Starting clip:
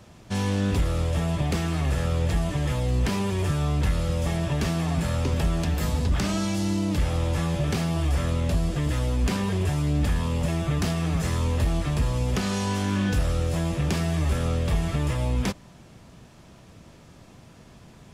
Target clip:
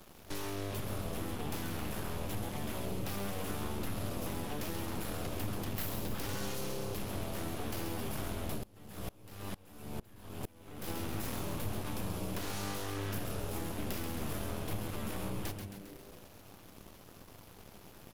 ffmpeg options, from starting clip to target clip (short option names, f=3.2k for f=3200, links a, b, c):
-filter_complex "[0:a]equalizer=f=87:w=1.2:g=-5,bandreject=f=1.9k:w=7.5,bandreject=f=67.33:t=h:w=4,bandreject=f=134.66:t=h:w=4,acompressor=threshold=-44dB:ratio=2.5,aexciter=amount=8.2:drive=3.5:freq=11k,aeval=exprs='0.0668*(cos(1*acos(clip(val(0)/0.0668,-1,1)))-cos(1*PI/2))+0.0266*(cos(3*acos(clip(val(0)/0.0668,-1,1)))-cos(3*PI/2))+0.0106*(cos(8*acos(clip(val(0)/0.0668,-1,1)))-cos(8*PI/2))':c=same,asplit=9[a][b][c][d][e][f][g][h][i];[b]adelay=134,afreqshift=-100,volume=-7dB[j];[c]adelay=268,afreqshift=-200,volume=-11.3dB[k];[d]adelay=402,afreqshift=-300,volume=-15.6dB[l];[e]adelay=536,afreqshift=-400,volume=-19.9dB[m];[f]adelay=670,afreqshift=-500,volume=-24.2dB[n];[g]adelay=804,afreqshift=-600,volume=-28.5dB[o];[h]adelay=938,afreqshift=-700,volume=-32.8dB[p];[i]adelay=1072,afreqshift=-800,volume=-37.1dB[q];[a][j][k][l][m][n][o][p][q]amix=inputs=9:normalize=0,asplit=3[r][s][t];[r]afade=t=out:st=8.57:d=0.02[u];[s]aeval=exprs='val(0)*pow(10,-26*if(lt(mod(-2.2*n/s,1),2*abs(-2.2)/1000),1-mod(-2.2*n/s,1)/(2*abs(-2.2)/1000),(mod(-2.2*n/s,1)-2*abs(-2.2)/1000)/(1-2*abs(-2.2)/1000))/20)':c=same,afade=t=in:st=8.57:d=0.02,afade=t=out:st=10.87:d=0.02[v];[t]afade=t=in:st=10.87:d=0.02[w];[u][v][w]amix=inputs=3:normalize=0,volume=3.5dB"